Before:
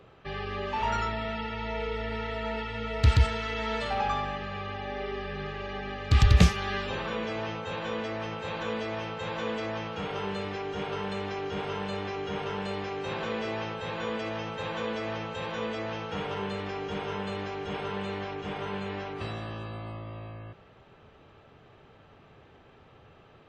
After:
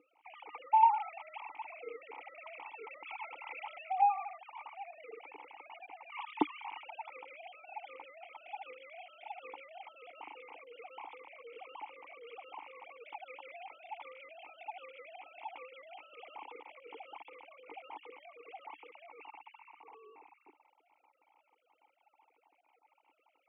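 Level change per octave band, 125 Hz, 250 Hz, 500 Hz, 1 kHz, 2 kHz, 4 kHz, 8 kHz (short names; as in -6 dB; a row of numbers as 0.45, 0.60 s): under -40 dB, -15.0 dB, -17.5 dB, -1.5 dB, -14.0 dB, -19.5 dB, under -30 dB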